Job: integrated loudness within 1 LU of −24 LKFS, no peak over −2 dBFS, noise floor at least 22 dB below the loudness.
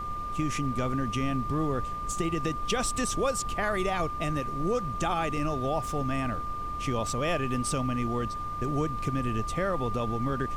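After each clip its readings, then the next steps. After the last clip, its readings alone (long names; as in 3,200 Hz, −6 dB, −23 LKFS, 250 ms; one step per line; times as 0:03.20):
interfering tone 1,200 Hz; level of the tone −33 dBFS; background noise floor −35 dBFS; target noise floor −52 dBFS; integrated loudness −30.0 LKFS; sample peak −14.0 dBFS; target loudness −24.0 LKFS
→ notch filter 1,200 Hz, Q 30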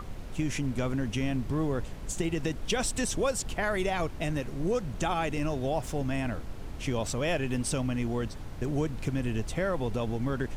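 interfering tone none found; background noise floor −40 dBFS; target noise floor −54 dBFS
→ noise reduction from a noise print 14 dB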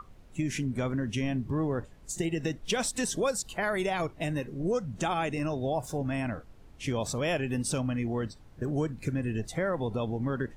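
background noise floor −52 dBFS; target noise floor −54 dBFS
→ noise reduction from a noise print 6 dB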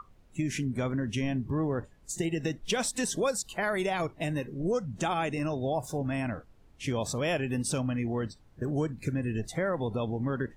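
background noise floor −58 dBFS; integrated loudness −31.5 LKFS; sample peak −15.5 dBFS; target loudness −24.0 LKFS
→ level +7.5 dB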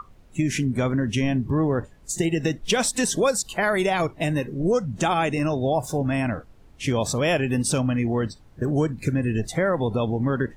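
integrated loudness −24.0 LKFS; sample peak −8.0 dBFS; background noise floor −50 dBFS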